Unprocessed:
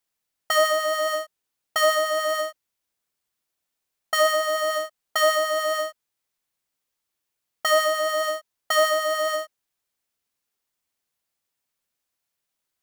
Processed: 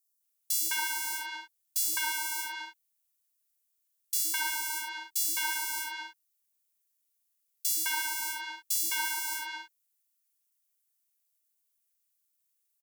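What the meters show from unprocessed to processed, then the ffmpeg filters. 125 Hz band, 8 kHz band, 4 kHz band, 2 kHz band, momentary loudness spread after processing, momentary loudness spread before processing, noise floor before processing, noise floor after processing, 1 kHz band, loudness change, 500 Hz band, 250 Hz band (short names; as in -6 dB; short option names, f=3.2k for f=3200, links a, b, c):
n/a, +2.0 dB, -8.0 dB, -7.5 dB, 12 LU, 10 LU, -82 dBFS, -78 dBFS, -13.0 dB, -7.0 dB, under -40 dB, -7.0 dB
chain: -filter_complex "[0:a]aeval=exprs='val(0)*sin(2*PI*300*n/s)':c=same,aderivative,acrossover=split=330|4200[a][b][c];[a]adelay=50[d];[b]adelay=210[e];[d][e][c]amix=inputs=3:normalize=0,volume=4.5dB"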